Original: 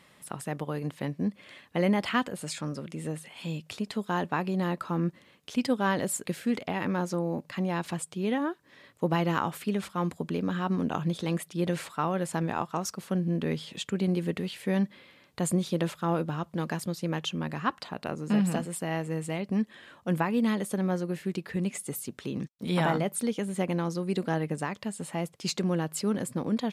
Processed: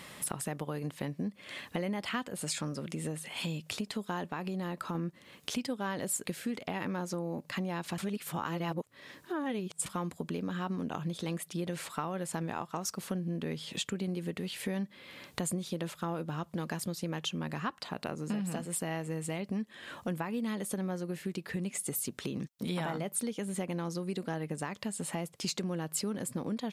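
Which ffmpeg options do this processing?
-filter_complex "[0:a]asettb=1/sr,asplit=3[a][b][c];[a]atrim=end=4.304[d];[b]atrim=start=4.3:end=4.95,asetpts=PTS-STARTPTS,afade=t=in:d=0.004:c=qsin,afade=t=out:st=0.646:d=0.004:c=qsin,acompressor=threshold=-32dB:ratio=2:attack=3.2:release=140:knee=1:detection=peak[e];[c]atrim=start=4.946[f];[d][e]acrossfade=d=0.004:c1=hsin:c2=qsin[g];[g][f]acrossfade=d=0.004:c1=qsin:c2=hsin,asplit=3[h][i][j];[h]atrim=end=7.982[k];[i]atrim=start=7.978:end=9.862,asetpts=PTS-STARTPTS,areverse[l];[j]atrim=start=9.858[m];[k][l]acrossfade=d=0.004:c1=hsin:c2=hsin[n];[n][m]acrossfade=d=0.004:c1=hsin:c2=hsin,acompressor=threshold=-45dB:ratio=4,highshelf=f=4.7k:g=5,volume=9dB"

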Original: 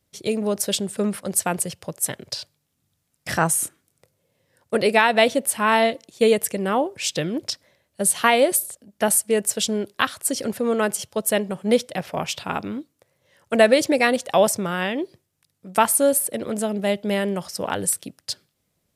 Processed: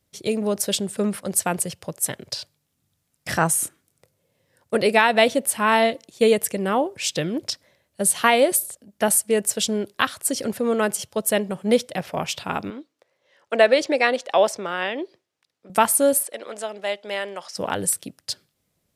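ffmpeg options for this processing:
-filter_complex "[0:a]asettb=1/sr,asplit=3[a][b][c];[a]atrim=end=12.704[d];[b]atrim=start=12.7:end=15.7,asetpts=PTS-STARTPTS,afade=t=in:d=0.004:c=qsin,afade=t=out:st=2.996:d=0.004:c=qsin,acrossover=split=290 6200:gain=0.112 1 0.158[e][f][g];[e][f][g]amix=inputs=3:normalize=0[h];[c]atrim=start=15.696[i];[d][h]acrossfade=d=0.004:c1=hsin:c2=qsin[j];[j][i]acrossfade=d=0.004:c1=qsin:c2=hsin,asettb=1/sr,asplit=3[k][l][m];[k]atrim=end=16.234[n];[l]atrim=start=16.23:end=17.57,asetpts=PTS-STARTPTS,afade=t=in:d=0.004:c=qsin,afade=t=out:st=1.336:d=0.004:c=qsin,highpass=640,lowpass=6.7k[o];[m]atrim=start=17.566[p];[n][o]acrossfade=d=0.004:c1=hsin:c2=qsin[q];[q][p]acrossfade=d=0.004:c1=qsin:c2=hsin"

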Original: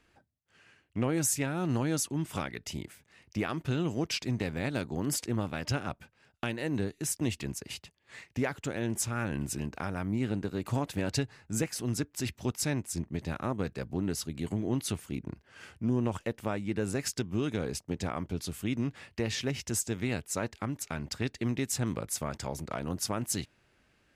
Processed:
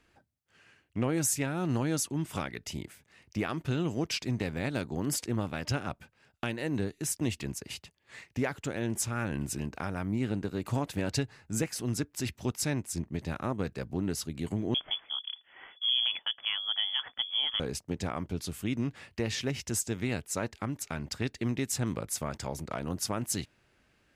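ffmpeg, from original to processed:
-filter_complex "[0:a]asettb=1/sr,asplit=3[a][b][c];[a]atrim=end=14.744[d];[b]atrim=start=14.74:end=17.6,asetpts=PTS-STARTPTS,afade=t=in:d=0.004:c=qsin,afade=t=out:st=2.856:d=0.004:c=qsin,lowpass=f=3k:t=q:w=0.5098,lowpass=f=3k:t=q:w=0.6013,lowpass=f=3k:t=q:w=0.9,lowpass=f=3k:t=q:w=2.563,afreqshift=-3500[e];[c]atrim=start=17.596[f];[d][e]acrossfade=d=0.004:c1=hsin:c2=qsin[g];[g][f]acrossfade=d=0.004:c1=qsin:c2=hsin"

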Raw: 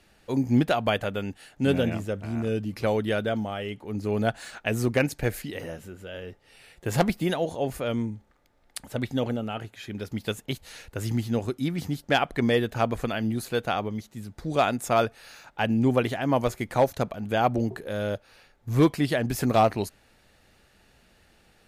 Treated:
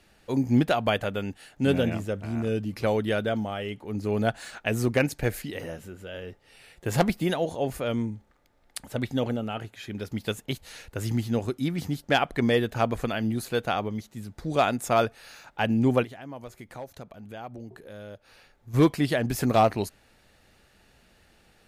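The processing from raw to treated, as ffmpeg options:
-filter_complex "[0:a]asplit=3[a][b][c];[a]afade=t=out:st=16.03:d=0.02[d];[b]acompressor=threshold=-50dB:ratio=2:attack=3.2:release=140:knee=1:detection=peak,afade=t=in:st=16.03:d=0.02,afade=t=out:st=18.73:d=0.02[e];[c]afade=t=in:st=18.73:d=0.02[f];[d][e][f]amix=inputs=3:normalize=0"

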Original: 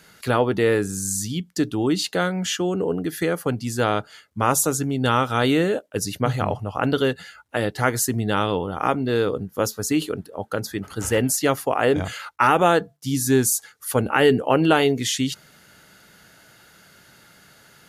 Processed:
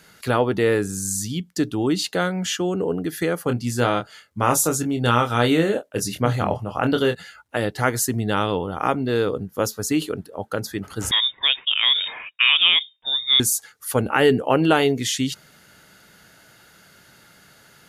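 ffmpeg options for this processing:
-filter_complex "[0:a]asettb=1/sr,asplit=3[a][b][c];[a]atrim=end=3.454[d];[b]atrim=start=3.45:end=7.15,asetpts=PTS-STARTPTS,afade=t=in:d=0.004:c=qsin,afade=t=out:st=3.696:d=0.004:c=qsin,asplit=2[e][f];[f]adelay=25,volume=-6.5dB[g];[e][g]amix=inputs=2:normalize=0,atrim=end_sample=163170[h];[c]atrim=start=7.146[i];[d][h]acrossfade=d=0.004:c1=hsin:c2=qsin[j];[j][i]acrossfade=d=0.004:c1=qsin:c2=hsin,asettb=1/sr,asplit=3[k][l][m];[k]atrim=end=11.114[n];[l]atrim=start=11.11:end=13.4,asetpts=PTS-STARTPTS,afade=t=in:d=0.004:c=qsin,afade=t=out:st=2.286:d=0.004:c=qsin,lowpass=f=3.2k:t=q:w=0.5098,lowpass=f=3.2k:t=q:w=0.6013,lowpass=f=3.2k:t=q:w=0.9,lowpass=f=3.2k:t=q:w=2.563,afreqshift=-3800[o];[m]atrim=start=13.396[p];[n][o]acrossfade=d=0.004:c1=hsin:c2=qsin[q];[q][p]acrossfade=d=0.004:c1=qsin:c2=hsin"

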